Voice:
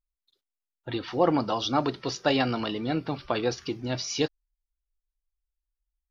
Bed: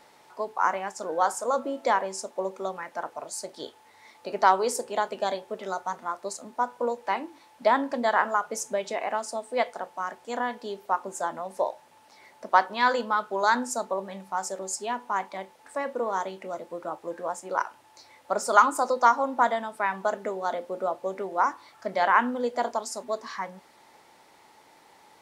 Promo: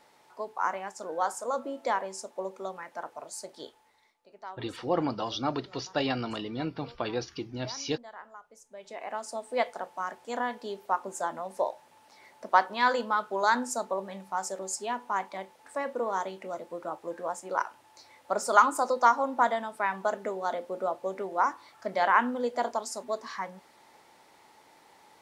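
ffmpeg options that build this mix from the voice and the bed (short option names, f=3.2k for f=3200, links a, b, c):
-filter_complex "[0:a]adelay=3700,volume=-5dB[a];[1:a]volume=16dB,afade=t=out:st=3.61:d=0.55:silence=0.125893,afade=t=in:st=8.7:d=0.82:silence=0.0891251[b];[a][b]amix=inputs=2:normalize=0"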